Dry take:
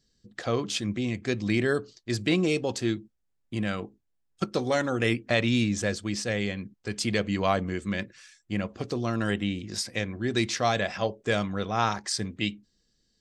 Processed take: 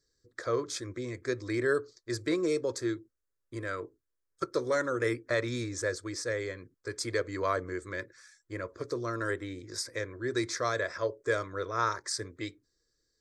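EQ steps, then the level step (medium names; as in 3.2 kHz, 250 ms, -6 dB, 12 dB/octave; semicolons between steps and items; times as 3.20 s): bass shelf 130 Hz -8 dB; treble shelf 9.2 kHz -4.5 dB; static phaser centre 770 Hz, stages 6; 0.0 dB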